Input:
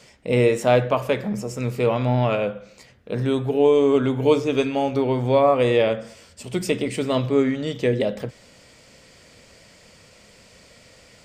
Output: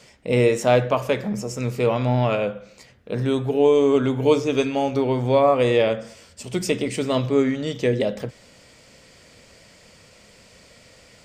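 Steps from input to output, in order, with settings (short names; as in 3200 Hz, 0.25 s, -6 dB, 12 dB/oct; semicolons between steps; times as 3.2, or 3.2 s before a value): dynamic EQ 6100 Hz, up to +5 dB, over -52 dBFS, Q 2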